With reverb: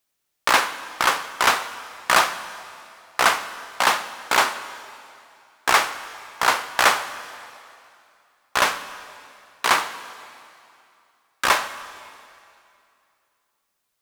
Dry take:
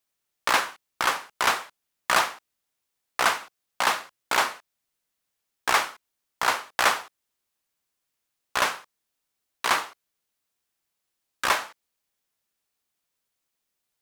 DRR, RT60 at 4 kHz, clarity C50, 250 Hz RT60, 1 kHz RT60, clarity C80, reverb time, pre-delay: 12.0 dB, 2.4 s, 13.0 dB, 2.6 s, 2.6 s, 13.5 dB, 2.6 s, 17 ms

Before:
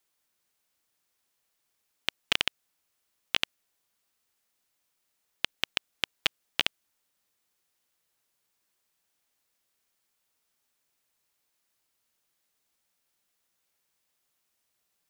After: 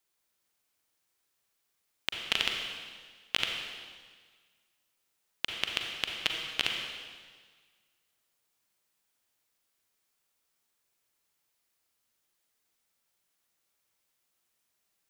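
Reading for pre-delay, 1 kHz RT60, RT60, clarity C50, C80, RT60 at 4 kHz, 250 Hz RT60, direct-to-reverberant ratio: 37 ms, 1.6 s, 1.6 s, 2.5 dB, 4.0 dB, 1.6 s, 1.6 s, 1.5 dB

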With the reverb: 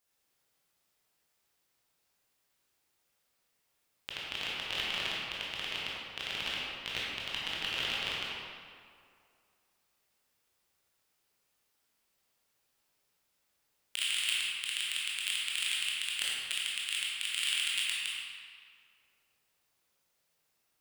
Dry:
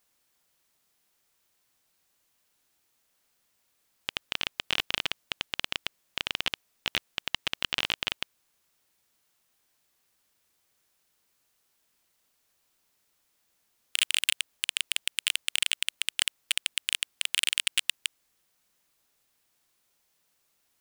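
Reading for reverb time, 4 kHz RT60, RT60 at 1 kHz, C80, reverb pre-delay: 2.3 s, 1.4 s, 2.3 s, -1.5 dB, 16 ms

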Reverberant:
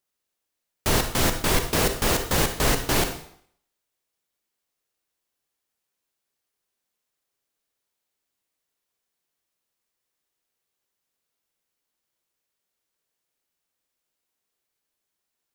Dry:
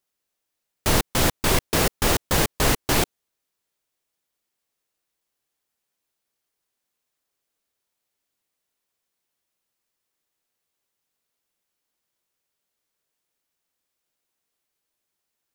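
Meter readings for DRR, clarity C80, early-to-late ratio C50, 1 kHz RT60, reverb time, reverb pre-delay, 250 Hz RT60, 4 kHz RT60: 7.0 dB, 12.0 dB, 8.5 dB, 0.60 s, 0.60 s, 37 ms, 0.65 s, 0.60 s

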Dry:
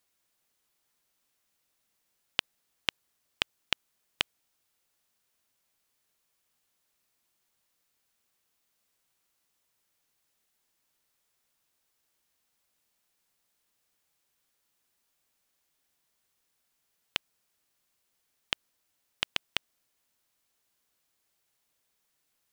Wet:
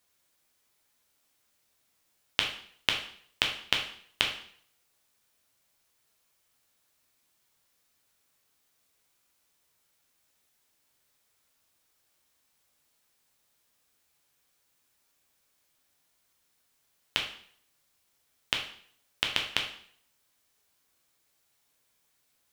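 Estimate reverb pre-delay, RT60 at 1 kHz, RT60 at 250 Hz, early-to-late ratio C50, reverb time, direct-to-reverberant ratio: 4 ms, 0.55 s, 0.60 s, 7.0 dB, 0.60 s, 1.0 dB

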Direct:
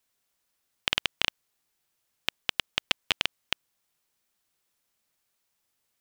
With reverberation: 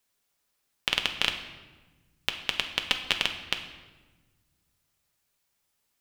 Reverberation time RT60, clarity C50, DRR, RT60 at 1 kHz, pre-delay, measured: 1.3 s, 8.5 dB, 4.5 dB, 1.2 s, 5 ms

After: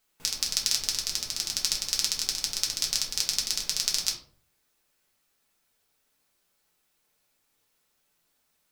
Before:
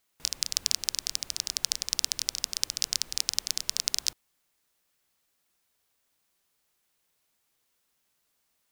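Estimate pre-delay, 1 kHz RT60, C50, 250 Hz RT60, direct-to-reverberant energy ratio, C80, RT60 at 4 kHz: 5 ms, 0.45 s, 8.5 dB, 0.65 s, -2.0 dB, 13.0 dB, 0.30 s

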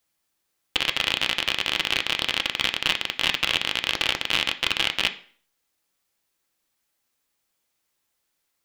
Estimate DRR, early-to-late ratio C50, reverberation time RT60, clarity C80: 7.0 dB, 14.5 dB, 0.50 s, 19.0 dB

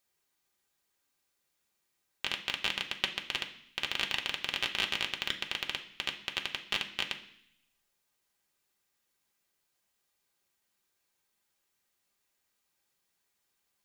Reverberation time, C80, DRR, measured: 0.65 s, 15.0 dB, 1.5 dB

